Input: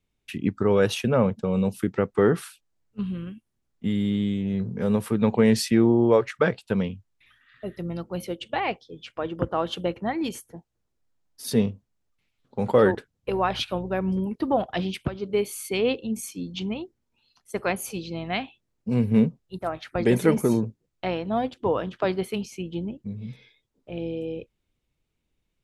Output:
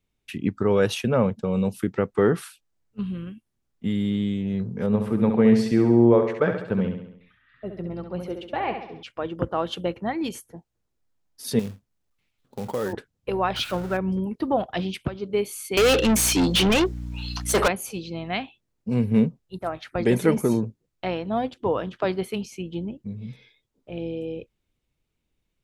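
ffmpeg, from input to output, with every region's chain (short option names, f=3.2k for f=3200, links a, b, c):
-filter_complex "[0:a]asettb=1/sr,asplit=3[a][b][c];[a]atrim=end=4.864[d];[b]atrim=start=4.86:end=9.03,asetpts=PTS-STARTPTS,afade=t=in:d=0.004:c=qsin,afade=t=out:st=4.166:d=0.004:c=qsin,lowpass=f=1.6k:p=1,aecho=1:1:68|136|204|272|340|408:0.447|0.237|0.125|0.0665|0.0352|0.0187,atrim=end_sample=183897[e];[c]atrim=start=9.026[f];[d][e]acrossfade=d=0.004:c1=hsin:c2=qsin[g];[g][f]acrossfade=d=0.004:c1=qsin:c2=hsin,asettb=1/sr,asplit=3[h][i][j];[h]atrim=end=11.594[k];[i]atrim=start=11.59:end=12.93,asetpts=PTS-STARTPTS,afade=t=in:d=0.004:c=qsin,afade=t=out:st=1.336:d=0.004:c=qsin,acompressor=threshold=-31dB:ratio=2:attack=3.2:release=140:knee=1:detection=peak,acrusher=bits=4:mode=log:mix=0:aa=0.000001[l];[j]atrim=start=12.926[m];[k][l]acrossfade=d=0.004:c1=hsin:c2=qsin[n];[n][m]acrossfade=d=0.004:c1=qsin:c2=hsin,asettb=1/sr,asplit=3[o][p][q];[o]atrim=end=13.564[r];[p]atrim=start=13.56:end=13.97,asetpts=PTS-STARTPTS,afade=t=in:d=0.004:c=qsin,afade=t=out:st=0.406:d=0.004:c=qsin,aeval=exprs='val(0)+0.5*0.0168*sgn(val(0))':c=same,equalizer=f=1.4k:t=o:w=0.31:g=9[s];[q]atrim=start=13.966[t];[r][s]acrossfade=d=0.004:c1=hsin:c2=qsin[u];[u][t]acrossfade=d=0.004:c1=qsin:c2=hsin,asettb=1/sr,asplit=3[v][w][x];[v]atrim=end=15.774[y];[w]atrim=start=15.77:end=17.68,asetpts=PTS-STARTPTS,afade=t=in:d=0.004:c=qsin,afade=t=out:st=1.906:d=0.004:c=qsin,highpass=170,asplit=2[z][aa];[aa]highpass=f=720:p=1,volume=36dB,asoftclip=type=tanh:threshold=-11.5dB[ab];[z][ab]amix=inputs=2:normalize=0,lowpass=f=7.2k:p=1,volume=-6dB,aeval=exprs='val(0)+0.0282*(sin(2*PI*60*n/s)+sin(2*PI*2*60*n/s)/2+sin(2*PI*3*60*n/s)/3+sin(2*PI*4*60*n/s)/4+sin(2*PI*5*60*n/s)/5)':c=same[ac];[x]atrim=start=17.676[ad];[y][ac]acrossfade=d=0.004:c1=hsin:c2=qsin[ae];[ae][ad]acrossfade=d=0.004:c1=qsin:c2=hsin"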